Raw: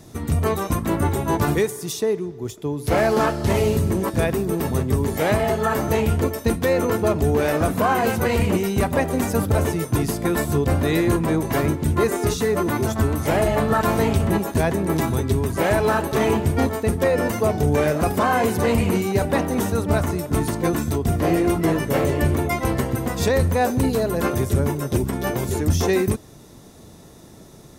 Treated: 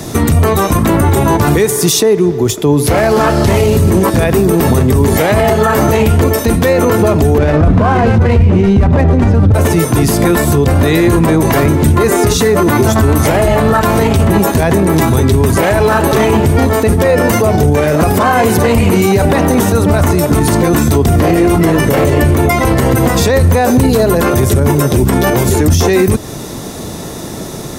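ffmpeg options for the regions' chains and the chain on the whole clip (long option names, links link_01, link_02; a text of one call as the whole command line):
ffmpeg -i in.wav -filter_complex "[0:a]asettb=1/sr,asplit=3[link_01][link_02][link_03];[link_01]atrim=end=7.384[link_04];[link_02]atrim=start=7.38:end=9.54,asetpts=PTS-STARTPTS,afade=type=in:duration=0.004:curve=qsin,afade=type=out:start_time=2.156:duration=0.004:curve=qsin,aemphasis=mode=reproduction:type=bsi,adynamicsmooth=sensitivity=5.5:basefreq=2400[link_05];[link_03]atrim=start=9.536[link_06];[link_04][link_05]acrossfade=duration=0.004:curve1=hsin:curve2=qsin[link_07];[link_07][link_06]acrossfade=duration=0.004:curve1=qsin:curve2=hsin,lowshelf=frequency=140:gain=-5,acrossover=split=130[link_08][link_09];[link_09]acompressor=threshold=-29dB:ratio=2[link_10];[link_08][link_10]amix=inputs=2:normalize=0,alimiter=level_in=23.5dB:limit=-1dB:release=50:level=0:latency=1,volume=-1dB" out.wav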